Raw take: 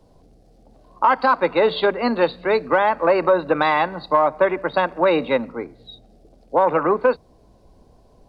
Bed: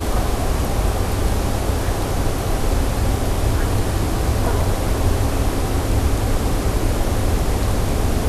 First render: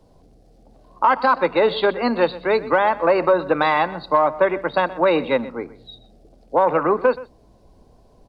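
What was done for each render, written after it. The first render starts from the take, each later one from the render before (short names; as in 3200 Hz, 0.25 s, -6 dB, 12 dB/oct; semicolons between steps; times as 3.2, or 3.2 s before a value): echo 0.125 s -18 dB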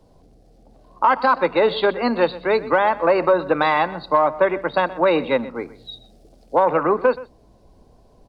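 5.55–6.6 high shelf 2700 Hz +7.5 dB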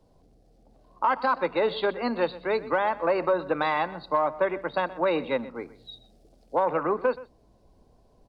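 gain -7.5 dB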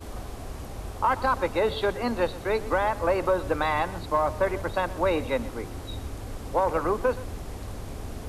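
add bed -17.5 dB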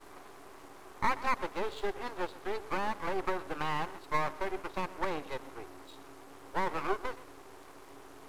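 rippled Chebyshev high-pass 270 Hz, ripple 9 dB; half-wave rectifier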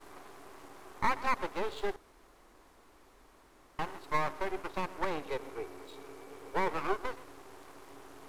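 1.96–3.79 room tone; 5.28–6.7 small resonant body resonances 440/2300 Hz, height 11 dB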